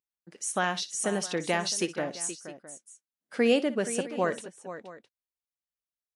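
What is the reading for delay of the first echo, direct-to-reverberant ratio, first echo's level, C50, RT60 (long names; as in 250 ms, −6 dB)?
60 ms, no reverb audible, −16.0 dB, no reverb audible, no reverb audible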